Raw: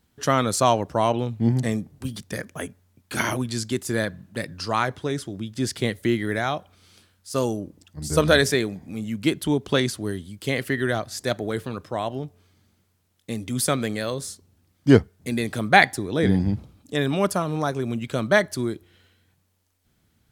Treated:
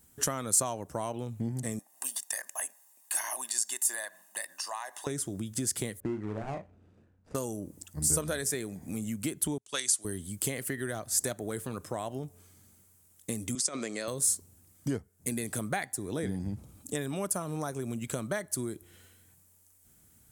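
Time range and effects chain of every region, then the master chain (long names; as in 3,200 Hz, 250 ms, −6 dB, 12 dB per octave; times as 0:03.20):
0:01.79–0:05.07: high-pass filter 520 Hz 24 dB per octave + downward compressor 2.5 to 1, threshold −41 dBFS + comb filter 1.1 ms, depth 79%
0:06.00–0:07.35: running median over 41 samples + low-pass filter 2,900 Hz + double-tracking delay 37 ms −8.5 dB
0:09.58–0:10.05: meter weighting curve ITU-R 468 + multiband upward and downward expander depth 100%
0:13.55–0:14.08: compressor whose output falls as the input rises −25 dBFS, ratio −0.5 + loudspeaker in its box 340–6,900 Hz, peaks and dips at 480 Hz −4 dB, 800 Hz −5 dB, 1,600 Hz −6 dB, 3,300 Hz −5 dB, 5,100 Hz +4 dB
whole clip: downward compressor 5 to 1, threshold −32 dBFS; high shelf with overshoot 5,900 Hz +12 dB, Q 1.5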